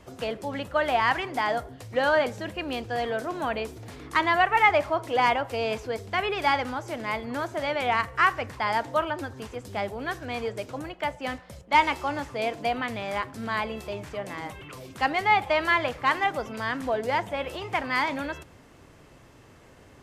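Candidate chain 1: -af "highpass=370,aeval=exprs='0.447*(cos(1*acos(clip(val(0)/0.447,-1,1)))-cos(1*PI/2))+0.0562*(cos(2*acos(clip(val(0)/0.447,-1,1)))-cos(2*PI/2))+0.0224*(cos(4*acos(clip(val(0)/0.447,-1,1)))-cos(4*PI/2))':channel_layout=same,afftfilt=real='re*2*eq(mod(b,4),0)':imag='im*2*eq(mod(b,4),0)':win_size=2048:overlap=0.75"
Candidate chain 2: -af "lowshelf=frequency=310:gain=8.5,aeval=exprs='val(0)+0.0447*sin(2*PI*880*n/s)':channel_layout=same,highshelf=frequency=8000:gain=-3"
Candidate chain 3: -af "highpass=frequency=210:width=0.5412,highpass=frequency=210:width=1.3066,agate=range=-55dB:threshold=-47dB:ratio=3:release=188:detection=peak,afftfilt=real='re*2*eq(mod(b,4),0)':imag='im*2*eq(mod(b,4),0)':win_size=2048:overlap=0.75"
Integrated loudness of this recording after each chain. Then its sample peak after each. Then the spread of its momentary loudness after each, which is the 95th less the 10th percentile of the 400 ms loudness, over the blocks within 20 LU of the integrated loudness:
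−29.5, −24.5, −29.0 LKFS; −8.5, −6.5, −8.0 dBFS; 14, 8, 13 LU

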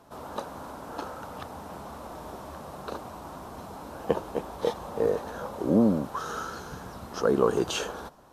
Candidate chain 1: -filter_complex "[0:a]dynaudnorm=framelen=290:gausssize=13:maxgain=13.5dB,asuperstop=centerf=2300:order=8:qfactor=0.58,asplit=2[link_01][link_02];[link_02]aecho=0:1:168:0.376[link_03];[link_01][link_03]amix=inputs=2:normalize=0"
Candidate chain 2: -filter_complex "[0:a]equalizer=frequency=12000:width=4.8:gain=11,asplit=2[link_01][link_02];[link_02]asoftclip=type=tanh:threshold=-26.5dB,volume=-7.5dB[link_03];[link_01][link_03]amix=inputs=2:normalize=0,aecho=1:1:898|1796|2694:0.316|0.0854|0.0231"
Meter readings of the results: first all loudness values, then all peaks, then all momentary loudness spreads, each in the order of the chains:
−23.0, −29.0 LKFS; −1.5, −8.5 dBFS; 20, 15 LU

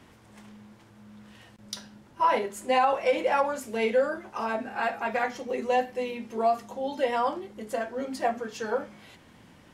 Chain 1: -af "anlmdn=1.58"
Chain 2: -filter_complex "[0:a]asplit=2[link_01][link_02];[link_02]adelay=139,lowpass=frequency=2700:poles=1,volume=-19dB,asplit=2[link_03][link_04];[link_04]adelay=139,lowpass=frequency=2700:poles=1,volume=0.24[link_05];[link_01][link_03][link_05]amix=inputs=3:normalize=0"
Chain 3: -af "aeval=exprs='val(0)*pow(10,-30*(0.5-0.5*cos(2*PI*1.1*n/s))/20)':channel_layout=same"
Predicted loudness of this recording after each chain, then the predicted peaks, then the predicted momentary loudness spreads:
−28.0, −28.0, −33.5 LKFS; −12.0, −12.0, −13.5 dBFS; 10, 10, 24 LU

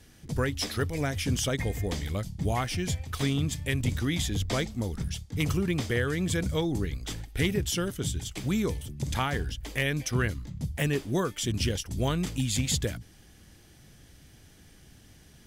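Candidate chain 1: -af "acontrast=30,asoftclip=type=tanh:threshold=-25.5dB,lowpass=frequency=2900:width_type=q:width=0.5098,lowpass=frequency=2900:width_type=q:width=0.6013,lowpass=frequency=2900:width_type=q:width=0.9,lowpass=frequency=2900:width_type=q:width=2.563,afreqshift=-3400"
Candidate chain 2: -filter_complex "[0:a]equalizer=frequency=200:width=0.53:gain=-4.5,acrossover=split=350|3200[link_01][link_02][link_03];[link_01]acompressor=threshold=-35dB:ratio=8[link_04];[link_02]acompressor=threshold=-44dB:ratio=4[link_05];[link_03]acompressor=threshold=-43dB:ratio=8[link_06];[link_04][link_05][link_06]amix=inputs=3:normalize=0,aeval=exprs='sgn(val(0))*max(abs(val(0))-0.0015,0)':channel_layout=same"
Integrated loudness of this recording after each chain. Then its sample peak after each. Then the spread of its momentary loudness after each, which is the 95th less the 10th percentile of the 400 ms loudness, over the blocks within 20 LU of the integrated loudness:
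−27.0, −39.0 LKFS; −15.5, −20.0 dBFS; 20, 3 LU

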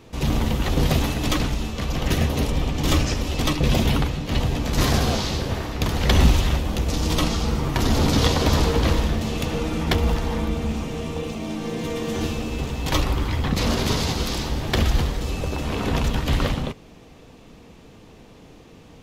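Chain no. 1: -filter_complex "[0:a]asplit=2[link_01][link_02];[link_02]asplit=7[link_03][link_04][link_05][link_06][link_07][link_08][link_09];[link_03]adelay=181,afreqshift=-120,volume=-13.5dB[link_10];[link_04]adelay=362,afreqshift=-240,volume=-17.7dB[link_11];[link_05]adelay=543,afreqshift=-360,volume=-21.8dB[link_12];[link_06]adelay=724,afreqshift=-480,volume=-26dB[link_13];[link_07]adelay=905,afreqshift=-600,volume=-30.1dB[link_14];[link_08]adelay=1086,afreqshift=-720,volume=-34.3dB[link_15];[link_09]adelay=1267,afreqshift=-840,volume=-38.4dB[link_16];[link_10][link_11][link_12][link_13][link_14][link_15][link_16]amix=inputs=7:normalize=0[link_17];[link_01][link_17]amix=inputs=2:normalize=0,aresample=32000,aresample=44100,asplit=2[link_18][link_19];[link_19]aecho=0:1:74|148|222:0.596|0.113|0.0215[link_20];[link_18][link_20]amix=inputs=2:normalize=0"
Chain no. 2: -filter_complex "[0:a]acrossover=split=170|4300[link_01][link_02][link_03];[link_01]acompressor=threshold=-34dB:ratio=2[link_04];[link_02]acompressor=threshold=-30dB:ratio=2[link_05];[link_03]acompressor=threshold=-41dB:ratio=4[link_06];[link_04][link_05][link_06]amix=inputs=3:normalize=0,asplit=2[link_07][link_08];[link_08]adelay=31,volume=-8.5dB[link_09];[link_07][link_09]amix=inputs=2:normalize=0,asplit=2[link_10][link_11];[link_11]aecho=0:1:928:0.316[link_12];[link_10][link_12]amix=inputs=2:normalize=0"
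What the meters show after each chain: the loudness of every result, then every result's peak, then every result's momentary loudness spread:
−21.5, −28.0 LKFS; −2.5, −11.0 dBFS; 8, 11 LU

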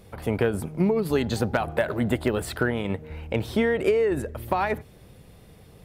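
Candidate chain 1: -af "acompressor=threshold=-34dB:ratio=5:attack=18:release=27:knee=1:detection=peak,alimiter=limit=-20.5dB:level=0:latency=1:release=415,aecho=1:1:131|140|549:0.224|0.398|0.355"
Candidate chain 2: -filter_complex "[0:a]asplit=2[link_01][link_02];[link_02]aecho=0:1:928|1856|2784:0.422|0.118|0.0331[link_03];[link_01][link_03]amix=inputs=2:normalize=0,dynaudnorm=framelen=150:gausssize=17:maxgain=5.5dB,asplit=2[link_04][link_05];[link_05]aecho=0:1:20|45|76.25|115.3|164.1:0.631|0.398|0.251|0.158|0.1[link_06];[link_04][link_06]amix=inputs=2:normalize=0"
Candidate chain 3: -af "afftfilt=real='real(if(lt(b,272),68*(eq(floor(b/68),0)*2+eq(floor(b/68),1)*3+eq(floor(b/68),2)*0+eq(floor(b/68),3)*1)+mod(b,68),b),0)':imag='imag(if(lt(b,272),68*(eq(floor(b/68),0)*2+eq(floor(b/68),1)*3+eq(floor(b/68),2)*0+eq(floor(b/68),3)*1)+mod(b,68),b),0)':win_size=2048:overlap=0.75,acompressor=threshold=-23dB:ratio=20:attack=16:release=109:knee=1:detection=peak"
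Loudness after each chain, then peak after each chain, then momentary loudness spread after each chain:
−33.0, −19.5, −24.5 LKFS; −17.0, −3.5, −8.5 dBFS; 11, 10, 5 LU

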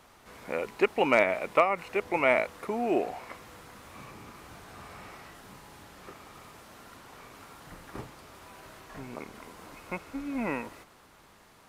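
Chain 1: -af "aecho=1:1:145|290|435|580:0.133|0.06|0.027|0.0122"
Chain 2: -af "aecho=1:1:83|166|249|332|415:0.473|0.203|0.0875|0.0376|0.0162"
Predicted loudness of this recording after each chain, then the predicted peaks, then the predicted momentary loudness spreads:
−28.5, −27.5 LKFS; −9.0, −8.5 dBFS; 23, 23 LU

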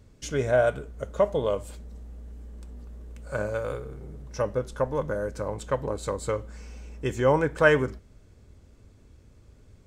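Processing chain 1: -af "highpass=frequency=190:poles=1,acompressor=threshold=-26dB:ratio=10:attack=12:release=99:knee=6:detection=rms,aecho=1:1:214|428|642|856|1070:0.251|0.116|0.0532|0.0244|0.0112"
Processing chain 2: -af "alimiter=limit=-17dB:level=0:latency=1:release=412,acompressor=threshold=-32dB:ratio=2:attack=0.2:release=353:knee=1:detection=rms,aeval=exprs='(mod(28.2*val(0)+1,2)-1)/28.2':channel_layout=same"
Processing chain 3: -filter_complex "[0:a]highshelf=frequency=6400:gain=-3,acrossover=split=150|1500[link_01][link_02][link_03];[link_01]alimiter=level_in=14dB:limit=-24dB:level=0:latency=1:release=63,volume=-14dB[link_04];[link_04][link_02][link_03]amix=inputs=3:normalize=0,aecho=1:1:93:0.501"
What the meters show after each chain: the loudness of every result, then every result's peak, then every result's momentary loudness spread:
−34.0, −38.0, −26.5 LKFS; −16.5, −29.0, −6.5 dBFS; 22, 21, 16 LU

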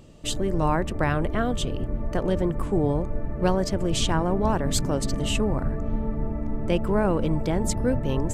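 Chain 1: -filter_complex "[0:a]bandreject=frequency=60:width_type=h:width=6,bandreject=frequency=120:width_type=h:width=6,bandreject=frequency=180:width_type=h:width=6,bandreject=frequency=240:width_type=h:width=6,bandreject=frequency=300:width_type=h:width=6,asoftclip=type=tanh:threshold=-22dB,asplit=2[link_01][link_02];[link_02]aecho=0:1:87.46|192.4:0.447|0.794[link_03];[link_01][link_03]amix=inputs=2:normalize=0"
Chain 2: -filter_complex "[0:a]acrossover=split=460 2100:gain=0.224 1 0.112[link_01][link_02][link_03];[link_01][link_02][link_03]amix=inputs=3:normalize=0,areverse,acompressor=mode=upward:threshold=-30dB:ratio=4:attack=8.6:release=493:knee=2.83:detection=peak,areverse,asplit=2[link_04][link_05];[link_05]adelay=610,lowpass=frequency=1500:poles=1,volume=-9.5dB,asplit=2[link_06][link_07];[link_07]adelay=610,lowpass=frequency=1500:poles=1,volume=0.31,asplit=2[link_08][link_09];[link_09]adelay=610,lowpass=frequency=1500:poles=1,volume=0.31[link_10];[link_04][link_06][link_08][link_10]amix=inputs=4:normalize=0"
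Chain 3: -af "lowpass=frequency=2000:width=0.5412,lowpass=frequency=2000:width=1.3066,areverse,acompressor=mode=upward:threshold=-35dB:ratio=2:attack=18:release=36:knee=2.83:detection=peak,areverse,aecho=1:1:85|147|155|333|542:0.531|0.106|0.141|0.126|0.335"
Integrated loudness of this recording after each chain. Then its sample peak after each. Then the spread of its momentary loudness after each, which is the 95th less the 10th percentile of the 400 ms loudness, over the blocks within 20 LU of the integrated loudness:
−27.0, −31.5, −24.5 LKFS; −15.5, −12.0, −8.5 dBFS; 4, 8, 6 LU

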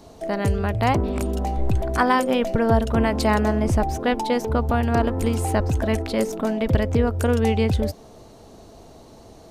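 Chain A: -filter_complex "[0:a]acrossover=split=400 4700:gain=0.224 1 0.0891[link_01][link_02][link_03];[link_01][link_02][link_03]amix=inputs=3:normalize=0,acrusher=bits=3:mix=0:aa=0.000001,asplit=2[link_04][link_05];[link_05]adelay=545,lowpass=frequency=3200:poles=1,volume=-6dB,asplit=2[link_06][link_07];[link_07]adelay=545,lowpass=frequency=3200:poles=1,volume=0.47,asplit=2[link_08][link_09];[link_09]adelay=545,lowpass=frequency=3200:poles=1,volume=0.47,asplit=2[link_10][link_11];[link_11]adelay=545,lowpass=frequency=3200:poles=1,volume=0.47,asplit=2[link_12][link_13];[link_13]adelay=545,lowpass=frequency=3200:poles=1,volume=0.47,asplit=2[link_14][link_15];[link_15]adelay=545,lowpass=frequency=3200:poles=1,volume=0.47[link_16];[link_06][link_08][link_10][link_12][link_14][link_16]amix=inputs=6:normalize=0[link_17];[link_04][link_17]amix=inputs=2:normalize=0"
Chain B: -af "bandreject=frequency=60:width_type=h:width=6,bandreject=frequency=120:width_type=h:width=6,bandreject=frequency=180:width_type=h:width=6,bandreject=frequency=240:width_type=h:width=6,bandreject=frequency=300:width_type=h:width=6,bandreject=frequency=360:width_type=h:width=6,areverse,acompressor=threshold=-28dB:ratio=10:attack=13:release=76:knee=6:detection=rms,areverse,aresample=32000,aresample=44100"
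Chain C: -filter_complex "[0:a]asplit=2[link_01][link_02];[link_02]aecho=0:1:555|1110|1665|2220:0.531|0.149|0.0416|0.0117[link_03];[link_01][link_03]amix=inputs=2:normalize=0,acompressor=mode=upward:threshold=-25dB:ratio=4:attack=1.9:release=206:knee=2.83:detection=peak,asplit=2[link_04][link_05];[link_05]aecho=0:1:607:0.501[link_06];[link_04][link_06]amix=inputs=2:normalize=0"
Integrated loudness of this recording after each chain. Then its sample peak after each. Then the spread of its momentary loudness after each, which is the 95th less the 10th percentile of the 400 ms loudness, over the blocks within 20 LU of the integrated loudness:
−24.5, −31.5, −20.5 LKFS; −4.5, −17.0, −4.5 dBFS; 12, 16, 9 LU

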